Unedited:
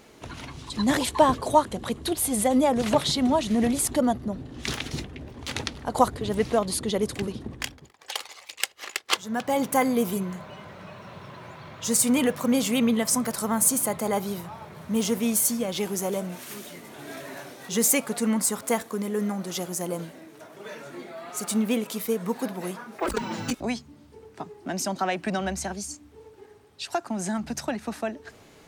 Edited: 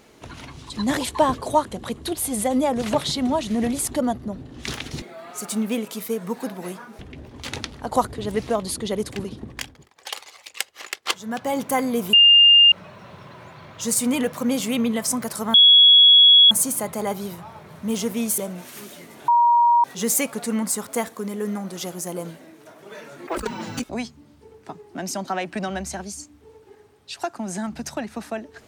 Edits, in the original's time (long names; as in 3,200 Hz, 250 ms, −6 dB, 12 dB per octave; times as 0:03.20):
0:10.16–0:10.75: beep over 2,810 Hz −8.5 dBFS
0:13.57: insert tone 3,350 Hz −8 dBFS 0.97 s
0:15.44–0:16.12: remove
0:17.02–0:17.58: beep over 949 Hz −12.5 dBFS
0:21.01–0:22.98: move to 0:05.02